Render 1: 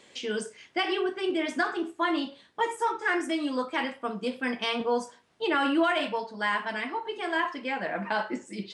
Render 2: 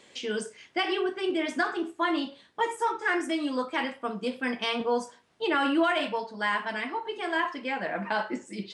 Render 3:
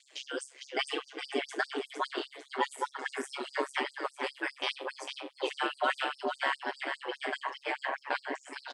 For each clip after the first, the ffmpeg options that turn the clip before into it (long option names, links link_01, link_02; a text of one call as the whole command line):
ffmpeg -i in.wav -af anull out.wav
ffmpeg -i in.wav -af "aecho=1:1:454|908|1362|1816|2270:0.562|0.231|0.0945|0.0388|0.0159,aeval=exprs='val(0)*sin(2*PI*68*n/s)':channel_layout=same,afftfilt=real='re*gte(b*sr/1024,240*pow(4600/240,0.5+0.5*sin(2*PI*4.9*pts/sr)))':imag='im*gte(b*sr/1024,240*pow(4600/240,0.5+0.5*sin(2*PI*4.9*pts/sr)))':win_size=1024:overlap=0.75" out.wav